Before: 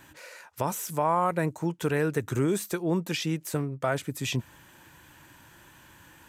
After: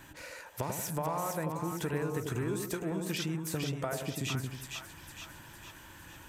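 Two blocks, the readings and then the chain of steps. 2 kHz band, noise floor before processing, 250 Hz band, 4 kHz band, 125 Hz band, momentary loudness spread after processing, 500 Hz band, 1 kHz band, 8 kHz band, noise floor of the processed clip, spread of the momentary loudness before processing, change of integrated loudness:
-5.5 dB, -55 dBFS, -6.0 dB, -3.0 dB, -4.5 dB, 14 LU, -7.0 dB, -8.5 dB, -2.5 dB, -52 dBFS, 7 LU, -6.5 dB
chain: low shelf 62 Hz +10.5 dB; compressor, threshold -32 dBFS, peak gain reduction 11.5 dB; split-band echo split 890 Hz, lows 92 ms, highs 0.459 s, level -4 dB

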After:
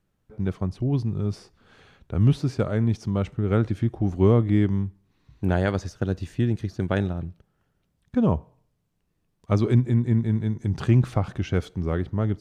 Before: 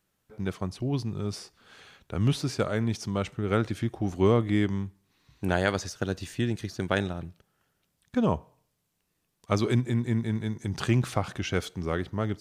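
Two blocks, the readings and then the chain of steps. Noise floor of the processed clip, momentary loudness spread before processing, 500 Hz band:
-72 dBFS, 9 LU, +2.0 dB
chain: tilt -2.5 dB/oct; gain -1 dB

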